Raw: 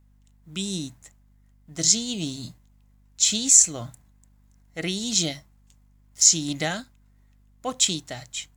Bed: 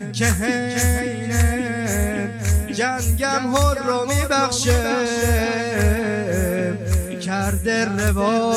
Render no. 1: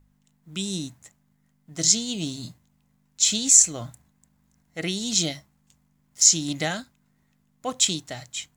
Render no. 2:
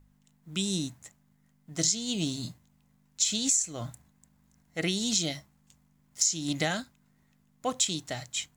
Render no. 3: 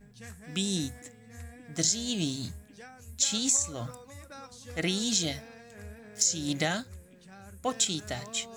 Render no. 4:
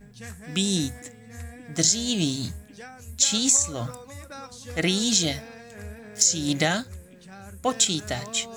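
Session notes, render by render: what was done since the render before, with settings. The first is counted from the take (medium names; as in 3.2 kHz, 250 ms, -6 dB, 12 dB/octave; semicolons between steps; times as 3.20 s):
de-hum 50 Hz, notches 2
compression 10:1, threshold -23 dBFS, peak gain reduction 14 dB
add bed -28 dB
trim +6 dB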